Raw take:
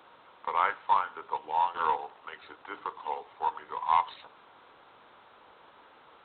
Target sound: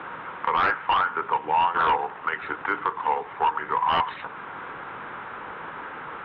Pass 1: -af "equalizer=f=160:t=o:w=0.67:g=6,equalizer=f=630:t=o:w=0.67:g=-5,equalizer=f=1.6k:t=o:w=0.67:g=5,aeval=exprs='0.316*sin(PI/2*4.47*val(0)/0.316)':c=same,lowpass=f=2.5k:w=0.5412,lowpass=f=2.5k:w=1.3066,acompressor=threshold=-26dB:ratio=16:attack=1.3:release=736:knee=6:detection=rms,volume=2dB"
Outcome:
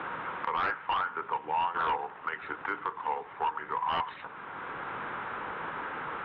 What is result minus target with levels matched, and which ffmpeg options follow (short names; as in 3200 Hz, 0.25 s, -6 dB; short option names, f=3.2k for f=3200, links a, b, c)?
compressor: peak gain reduction +8 dB
-af "equalizer=f=160:t=o:w=0.67:g=6,equalizer=f=630:t=o:w=0.67:g=-5,equalizer=f=1.6k:t=o:w=0.67:g=5,aeval=exprs='0.316*sin(PI/2*4.47*val(0)/0.316)':c=same,lowpass=f=2.5k:w=0.5412,lowpass=f=2.5k:w=1.3066,acompressor=threshold=-17.5dB:ratio=16:attack=1.3:release=736:knee=6:detection=rms,volume=2dB"